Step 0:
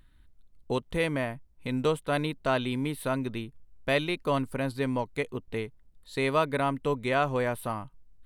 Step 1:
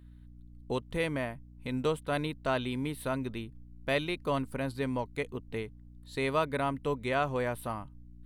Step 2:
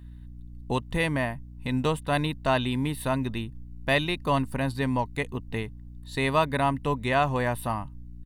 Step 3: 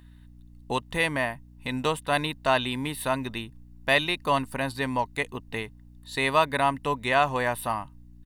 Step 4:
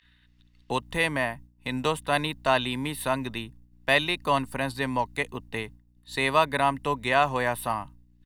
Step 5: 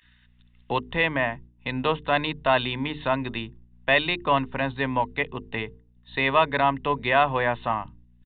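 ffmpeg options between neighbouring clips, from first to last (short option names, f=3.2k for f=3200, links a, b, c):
-af "aeval=exprs='val(0)+0.00447*(sin(2*PI*60*n/s)+sin(2*PI*2*60*n/s)/2+sin(2*PI*3*60*n/s)/3+sin(2*PI*4*60*n/s)/4+sin(2*PI*5*60*n/s)/5)':c=same,volume=-3.5dB"
-af "aecho=1:1:1.1:0.42,volume=6dB"
-af "lowshelf=f=330:g=-11.5,volume=3.5dB"
-filter_complex "[0:a]agate=range=-33dB:threshold=-40dB:ratio=3:detection=peak,acrossover=split=210|1500|4500[a][b][c][d];[c]acompressor=mode=upward:threshold=-48dB:ratio=2.5[e];[a][b][e][d]amix=inputs=4:normalize=0"
-af "bandreject=f=50:t=h:w=6,bandreject=f=100:t=h:w=6,bandreject=f=150:t=h:w=6,bandreject=f=200:t=h:w=6,bandreject=f=250:t=h:w=6,bandreject=f=300:t=h:w=6,bandreject=f=350:t=h:w=6,bandreject=f=400:t=h:w=6,bandreject=f=450:t=h:w=6,asoftclip=type=tanh:threshold=-10.5dB,aresample=8000,aresample=44100,volume=3dB"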